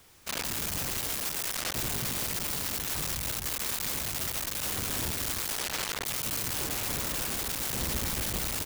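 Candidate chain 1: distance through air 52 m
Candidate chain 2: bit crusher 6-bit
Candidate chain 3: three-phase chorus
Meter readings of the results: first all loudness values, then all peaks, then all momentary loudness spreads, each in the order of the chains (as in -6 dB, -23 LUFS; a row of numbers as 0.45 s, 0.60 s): -35.0 LUFS, -29.5 LUFS, -33.5 LUFS; -23.0 dBFS, -24.0 dBFS, -22.0 dBFS; 2 LU, 1 LU, 1 LU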